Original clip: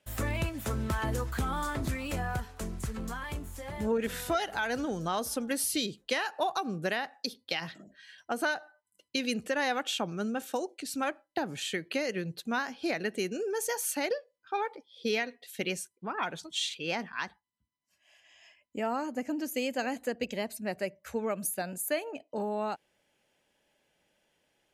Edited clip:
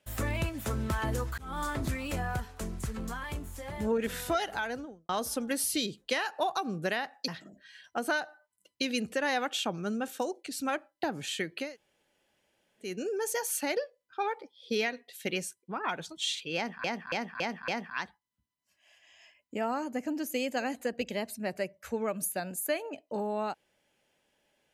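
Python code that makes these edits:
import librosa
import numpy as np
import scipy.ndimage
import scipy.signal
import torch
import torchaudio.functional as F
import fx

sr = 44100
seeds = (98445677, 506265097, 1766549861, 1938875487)

y = fx.studio_fade_out(x, sr, start_s=4.49, length_s=0.6)
y = fx.edit(y, sr, fx.fade_in_span(start_s=1.38, length_s=0.25),
    fx.cut(start_s=7.28, length_s=0.34),
    fx.room_tone_fill(start_s=11.99, length_s=1.23, crossfade_s=0.24),
    fx.repeat(start_s=16.9, length_s=0.28, count=5), tone=tone)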